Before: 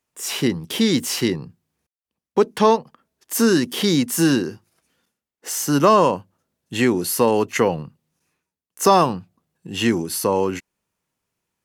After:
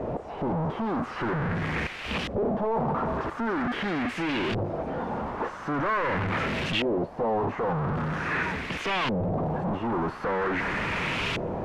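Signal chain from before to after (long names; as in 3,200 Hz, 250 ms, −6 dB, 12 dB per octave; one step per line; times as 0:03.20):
sign of each sample alone
auto-filter low-pass saw up 0.44 Hz 560–3,000 Hz
level −6.5 dB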